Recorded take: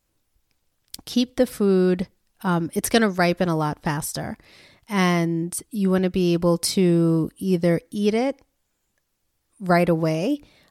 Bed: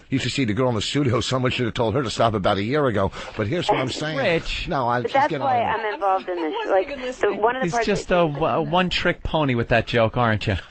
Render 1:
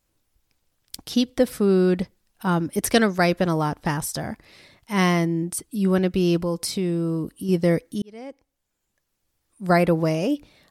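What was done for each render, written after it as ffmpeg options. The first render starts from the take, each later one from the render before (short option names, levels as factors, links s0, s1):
-filter_complex "[0:a]asettb=1/sr,asplit=3[s0][s1][s2];[s0]atrim=end=6.424[s3];[s1]atrim=start=6.42:end=7.49,asetpts=PTS-STARTPTS,afade=t=in:d=0.004:c=qsin,afade=t=out:st=1.066:d=0.004:c=qsin,acompressor=threshold=0.0282:ratio=1.5:attack=3.2:release=140:knee=1:detection=peak[s4];[s2]atrim=start=7.486[s5];[s3][s4]acrossfade=d=0.004:c1=hsin:c2=qsin[s6];[s6][s5]acrossfade=d=0.004:c1=qsin:c2=hsin,asplit=2[s7][s8];[s7]atrim=end=8.02,asetpts=PTS-STARTPTS,afade=t=out:st=8.016:d=0.004:c=hsin[s9];[s8]atrim=start=8.02,asetpts=PTS-STARTPTS,afade=t=in:d=1.92:c=qsin[s10];[s9][s10]concat=n=2:v=0:a=1"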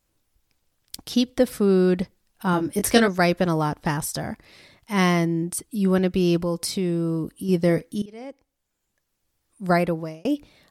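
-filter_complex "[0:a]asettb=1/sr,asplit=3[s0][s1][s2];[s0]atrim=end=2.514[s3];[s1]atrim=start=2.51:end=3.08,asetpts=PTS-STARTPTS,afade=t=in:d=0.004:c=qsin,afade=t=out:st=0.566:d=0.004:c=qsin,asplit=2[s4][s5];[s5]adelay=21,volume=0.531[s6];[s4][s6]amix=inputs=2:normalize=0,atrim=end_sample=25137[s7];[s2]atrim=start=3.076[s8];[s3][s7]acrossfade=d=0.004:c1=hsin:c2=qsin[s9];[s9][s8]acrossfade=d=0.004:c1=qsin:c2=hsin,asettb=1/sr,asplit=3[s10][s11][s12];[s10]atrim=end=7.654[s13];[s11]atrim=start=7.65:end=8.25,asetpts=PTS-STARTPTS,afade=t=in:d=0.004:c=qsin,afade=t=out:st=0.596:d=0.004:c=qsin,asplit=2[s14][s15];[s15]adelay=38,volume=0.2[s16];[s14][s16]amix=inputs=2:normalize=0,atrim=end_sample=26460[s17];[s12]atrim=start=8.246[s18];[s13][s17]acrossfade=d=0.004:c1=hsin:c2=qsin[s19];[s19][s18]acrossfade=d=0.004:c1=qsin:c2=hsin,asplit=2[s20][s21];[s20]atrim=end=10.25,asetpts=PTS-STARTPTS,afade=t=out:st=9.64:d=0.61[s22];[s21]atrim=start=10.25,asetpts=PTS-STARTPTS,afade=t=in:d=0.004:c=hsin[s23];[s22][s23]concat=n=2:v=0:a=1"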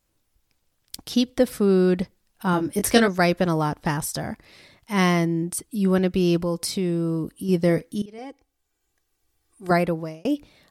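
-filter_complex "[0:a]asettb=1/sr,asplit=3[s0][s1][s2];[s0]atrim=end=8.184[s3];[s1]atrim=start=8.18:end=9.71,asetpts=PTS-STARTPTS,afade=t=in:d=0.004:c=qsin,afade=t=out:st=1.526:d=0.004:c=qsin,aecho=1:1:2.6:0.77,atrim=end_sample=67473[s4];[s2]atrim=start=9.706[s5];[s3][s4]acrossfade=d=0.004:c1=hsin:c2=qsin[s6];[s6][s5]acrossfade=d=0.004:c1=qsin:c2=hsin"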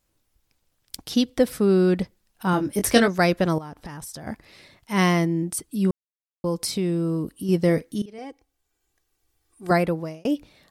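-filter_complex "[0:a]asettb=1/sr,asplit=3[s0][s1][s2];[s0]atrim=end=3.584[s3];[s1]atrim=start=3.58:end=4.27,asetpts=PTS-STARTPTS,afade=t=in:d=0.004:c=qsin,afade=t=out:st=0.686:d=0.004:c=qsin,acompressor=threshold=0.0224:ratio=16:attack=3.2:release=140:knee=1:detection=peak[s4];[s2]atrim=start=4.266[s5];[s3][s4]acrossfade=d=0.004:c1=hsin:c2=qsin[s6];[s6][s5]acrossfade=d=0.004:c1=qsin:c2=hsin,asplit=3[s7][s8][s9];[s7]atrim=end=5.91,asetpts=PTS-STARTPTS,afade=t=out:st=5.906:d=0.004:c=hsin[s10];[s8]atrim=start=5.91:end=6.44,asetpts=PTS-STARTPTS,volume=0[s11];[s9]atrim=start=6.44,asetpts=PTS-STARTPTS,afade=t=in:d=0.004:c=hsin[s12];[s10][s11][s12]concat=n=3:v=0:a=1"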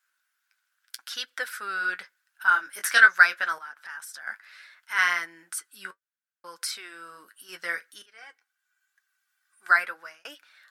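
-af "highpass=f=1500:t=q:w=8.3,flanger=delay=5.1:depth=5.8:regen=-46:speed=0.77:shape=triangular"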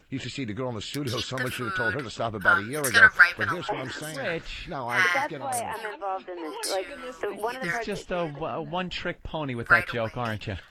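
-filter_complex "[1:a]volume=0.299[s0];[0:a][s0]amix=inputs=2:normalize=0"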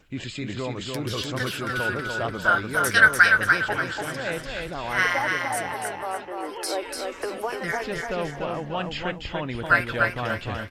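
-af "aecho=1:1:293|586|879|1172:0.631|0.221|0.0773|0.0271"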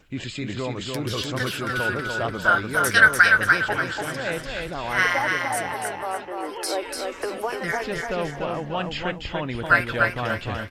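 -af "volume=1.19,alimiter=limit=0.708:level=0:latency=1"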